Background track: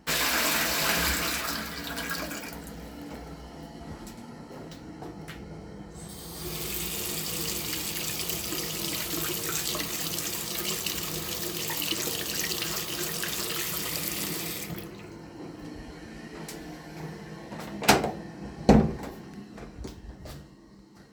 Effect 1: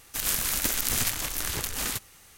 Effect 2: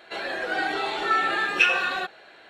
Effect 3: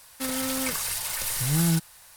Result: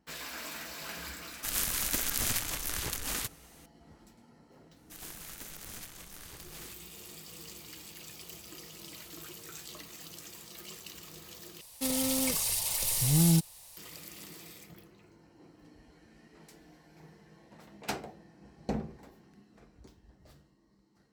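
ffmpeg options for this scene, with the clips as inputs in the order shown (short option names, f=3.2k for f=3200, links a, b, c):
-filter_complex "[1:a]asplit=2[a][b];[0:a]volume=-16dB[c];[b]aeval=exprs='clip(val(0),-1,0.0501)':c=same[d];[3:a]equalizer=f=1.5k:w=1.7:g=-14.5[e];[c]asplit=2[f][g];[f]atrim=end=11.614[h];[e]atrim=end=2.16,asetpts=PTS-STARTPTS,volume=-0.5dB[i];[g]atrim=start=13.766[j];[a]atrim=end=2.37,asetpts=PTS-STARTPTS,volume=-4.5dB,afade=t=in:d=0.004:c=hsin,afade=t=out:st=2.366:d=0.004:c=hsin,adelay=1290[k];[d]atrim=end=2.37,asetpts=PTS-STARTPTS,volume=-17.5dB,afade=t=in:d=0.004:c=hsin,afade=t=out:st=2.366:d=0.004:c=hsin,adelay=4760[l];[h][i]acrossfade=d=0.004:c1=hsin:c2=hsin[m];[m][j]acrossfade=d=0.004:c1=hsin:c2=hsin[n];[n][k][l]amix=inputs=3:normalize=0"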